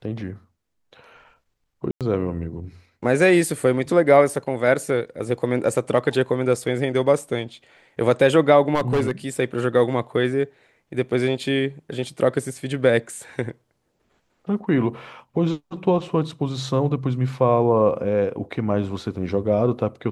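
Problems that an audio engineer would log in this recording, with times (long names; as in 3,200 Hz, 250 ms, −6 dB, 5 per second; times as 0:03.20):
0:01.91–0:02.01: drop-out 97 ms
0:08.75–0:09.11: clipping −16 dBFS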